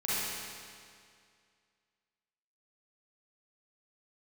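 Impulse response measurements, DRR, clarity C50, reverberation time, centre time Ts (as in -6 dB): -11.0 dB, -6.5 dB, 2.2 s, 173 ms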